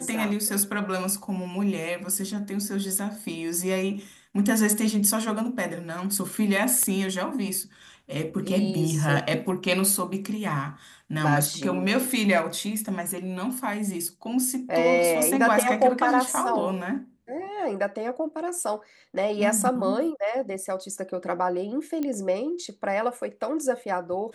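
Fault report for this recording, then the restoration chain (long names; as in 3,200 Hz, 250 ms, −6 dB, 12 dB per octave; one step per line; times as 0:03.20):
0:06.83: click −13 dBFS
0:22.03: click −17 dBFS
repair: click removal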